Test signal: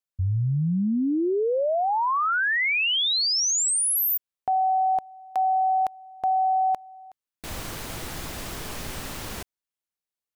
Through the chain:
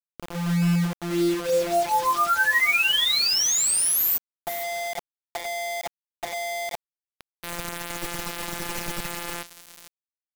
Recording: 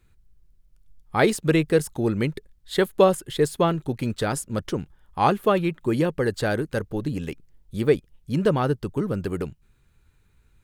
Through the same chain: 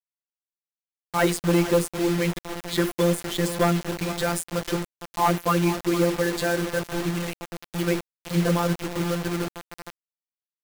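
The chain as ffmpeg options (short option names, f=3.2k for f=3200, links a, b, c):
-filter_complex "[0:a]equalizer=f=2k:t=o:w=1:g=2.5,acontrast=45,afftfilt=real='hypot(re,im)*cos(PI*b)':imag='0':win_size=1024:overlap=0.75,agate=range=-33dB:threshold=-52dB:ratio=3:release=72:detection=peak,asoftclip=type=hard:threshold=-10dB,bandreject=f=50:t=h:w=6,bandreject=f=100:t=h:w=6,bandreject=f=150:t=h:w=6,bandreject=f=200:t=h:w=6,bandreject=f=250:t=h:w=6,bandreject=f=300:t=h:w=6,bandreject=f=350:t=h:w=6,bandreject=f=400:t=h:w=6,bandreject=f=450:t=h:w=6,bandreject=f=500:t=h:w=6,asplit=2[a][b];[b]adelay=462,lowpass=f=3.3k:p=1,volume=-12dB,asplit=2[c][d];[d]adelay=462,lowpass=f=3.3k:p=1,volume=0.27,asplit=2[e][f];[f]adelay=462,lowpass=f=3.3k:p=1,volume=0.27[g];[c][e][g]amix=inputs=3:normalize=0[h];[a][h]amix=inputs=2:normalize=0,acrusher=bits=4:mix=0:aa=0.000001,volume=-1.5dB"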